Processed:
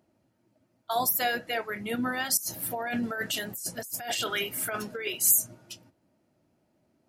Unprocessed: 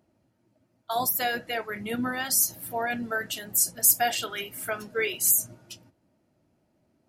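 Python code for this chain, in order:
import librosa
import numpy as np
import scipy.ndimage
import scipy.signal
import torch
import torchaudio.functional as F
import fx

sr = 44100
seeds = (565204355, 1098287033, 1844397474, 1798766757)

y = fx.low_shelf(x, sr, hz=98.0, db=-6.0)
y = fx.over_compress(y, sr, threshold_db=-33.0, ratio=-1.0, at=(2.37, 5.07))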